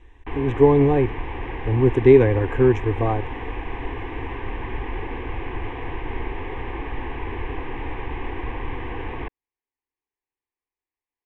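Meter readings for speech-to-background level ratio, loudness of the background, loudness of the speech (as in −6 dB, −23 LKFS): 13.5 dB, −32.0 LKFS, −18.5 LKFS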